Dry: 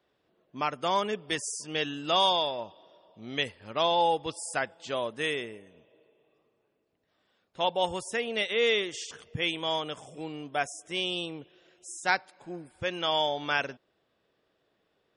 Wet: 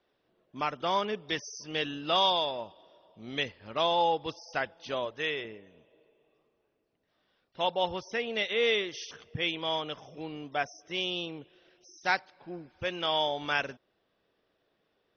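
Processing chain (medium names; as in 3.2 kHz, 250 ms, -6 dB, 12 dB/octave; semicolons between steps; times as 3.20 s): 5.05–5.45 s: peaking EQ 220 Hz -12 dB 0.61 oct; trim -1.5 dB; AC-3 32 kbps 44.1 kHz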